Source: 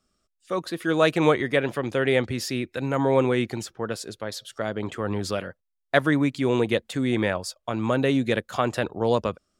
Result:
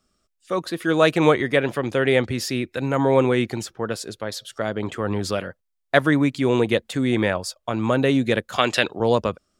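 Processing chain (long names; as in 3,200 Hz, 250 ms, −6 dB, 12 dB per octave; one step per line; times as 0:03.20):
0:08.58–0:09.00: meter weighting curve D
level +3 dB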